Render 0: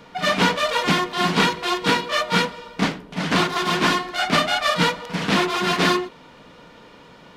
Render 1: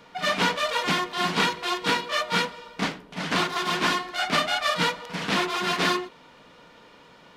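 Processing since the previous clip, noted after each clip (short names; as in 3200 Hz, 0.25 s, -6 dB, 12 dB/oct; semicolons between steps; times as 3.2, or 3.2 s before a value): low shelf 400 Hz -5.5 dB; gain -3.5 dB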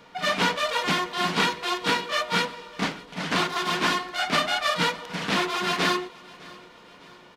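feedback echo 0.606 s, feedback 49%, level -22 dB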